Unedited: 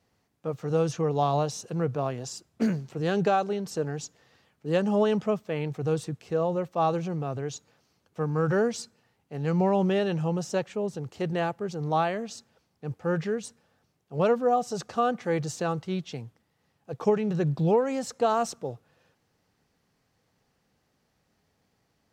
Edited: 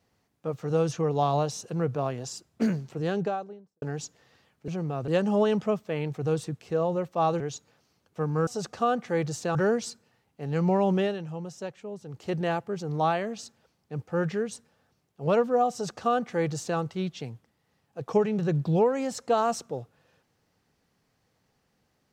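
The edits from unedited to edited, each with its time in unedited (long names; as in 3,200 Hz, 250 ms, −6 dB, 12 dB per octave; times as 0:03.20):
0:02.83–0:03.82: fade out and dull
0:07.00–0:07.40: move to 0:04.68
0:09.93–0:11.15: duck −8.5 dB, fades 0.18 s
0:14.63–0:15.71: duplicate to 0:08.47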